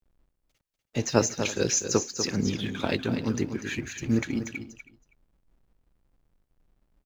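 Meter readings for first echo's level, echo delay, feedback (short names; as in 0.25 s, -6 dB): -9.0 dB, 0.244 s, no steady repeat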